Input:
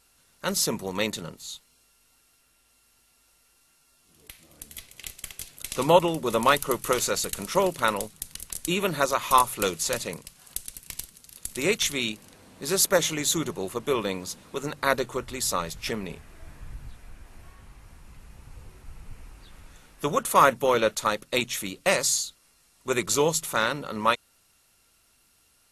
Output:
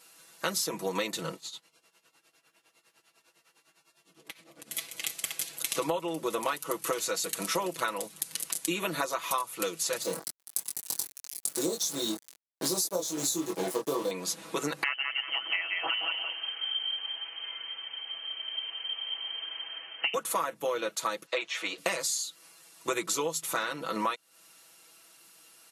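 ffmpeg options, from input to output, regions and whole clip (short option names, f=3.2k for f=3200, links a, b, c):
-filter_complex "[0:a]asettb=1/sr,asplit=3[a][b][c];[a]atrim=end=1.364[d];[b]atrim=start=1.36:end=4.71,asetpts=PTS-STARTPTS,afade=t=in:d=0.004:c=qsin,afade=t=out:st=3.346:d=0.004:c=qsin,aemphasis=mode=reproduction:type=50kf,tremolo=f=9.9:d=0.82[e];[c]atrim=start=4.706[f];[d][e]acrossfade=d=0.004:c1=hsin:c2=qsin[g];[g][f]acrossfade=d=0.004:c1=qsin:c2=hsin,asettb=1/sr,asplit=3[h][i][j];[h]atrim=end=10.024[k];[i]atrim=start=10.02:end=14.11,asetpts=PTS-STARTPTS,afade=t=in:d=0.004:c=qsin,afade=t=out:st=4.086:d=0.004:c=qsin,asuperstop=centerf=2100:order=8:qfactor=0.75,acrusher=bits=5:mix=0:aa=0.5,asplit=2[l][m];[m]adelay=22,volume=-2.5dB[n];[l][n]amix=inputs=2:normalize=0,atrim=end_sample=180369[o];[j]atrim=start=14.106[p];[k][o]acrossfade=d=0.004:c1=hsin:c2=qsin[q];[q][p]acrossfade=d=0.004:c1=qsin:c2=hsin,asettb=1/sr,asplit=3[r][s][t];[r]atrim=end=14.834[u];[s]atrim=start=14.83:end=20.14,asetpts=PTS-STARTPTS,afade=t=in:d=0.004:c=qsin,afade=t=out:st=5.306:d=0.004:c=qsin,acrusher=bits=8:mix=0:aa=0.5,aecho=1:1:176|352|528:0.501|0.105|0.0221,atrim=end_sample=234171,lowpass=f=2.7k:t=q:w=0.5098,lowpass=f=2.7k:t=q:w=0.6013,lowpass=f=2.7k:t=q:w=0.9,lowpass=f=2.7k:t=q:w=2.563,afreqshift=-3200[v];[t]atrim=start=20.136[w];[u][v]acrossfade=d=0.004:c1=hsin:c2=qsin[x];[x][w]acrossfade=d=0.004:c1=qsin:c2=hsin,asettb=1/sr,asplit=3[y][z][aa];[y]atrim=end=21.264[ab];[z]atrim=start=21.26:end=21.78,asetpts=PTS-STARTPTS,afade=t=in:d=0.004:c=qsin,afade=t=out:st=0.516:d=0.004:c=qsin,acrossover=split=3100[ac][ad];[ad]acompressor=threshold=-40dB:ratio=4:attack=1:release=60[ae];[ac][ae]amix=inputs=2:normalize=0,acrossover=split=430 6800:gain=0.0708 1 0.0794[af][ag][ah];[af][ag][ah]amix=inputs=3:normalize=0[ai];[aa]atrim=start=21.776[aj];[ab][ai]acrossfade=d=0.004:c1=hsin:c2=qsin[ak];[ak][aj]acrossfade=d=0.004:c1=qsin:c2=hsin,highpass=260,aecho=1:1:6.1:0.81,acompressor=threshold=-32dB:ratio=16,volume=5dB"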